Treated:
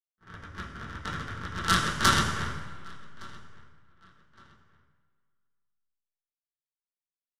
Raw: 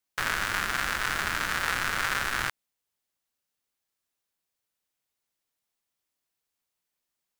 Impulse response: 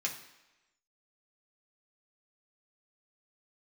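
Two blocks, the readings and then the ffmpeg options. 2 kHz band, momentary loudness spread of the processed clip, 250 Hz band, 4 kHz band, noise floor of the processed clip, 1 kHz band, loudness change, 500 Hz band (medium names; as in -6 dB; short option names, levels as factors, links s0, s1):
-4.5 dB, 24 LU, +8.0 dB, +1.5 dB, under -85 dBFS, +1.0 dB, 0.0 dB, +1.0 dB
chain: -filter_complex "[0:a]aeval=exprs='if(lt(val(0),0),0.251*val(0),val(0))':c=same,agate=range=0.00158:threshold=0.0501:ratio=16:detection=peak,lowshelf=f=230:g=12,dynaudnorm=f=340:g=5:m=5.96,aexciter=amount=4.8:drive=2.9:freq=5000,adynamicsmooth=sensitivity=3:basefreq=1400,asplit=2[s0][s1];[s1]adelay=1164,lowpass=f=3600:p=1,volume=0.0708,asplit=2[s2][s3];[s3]adelay=1164,lowpass=f=3600:p=1,volume=0.33[s4];[s0][s2][s4]amix=inputs=3:normalize=0[s5];[1:a]atrim=start_sample=2205,asetrate=23814,aresample=44100[s6];[s5][s6]afir=irnorm=-1:irlink=0,volume=1.78"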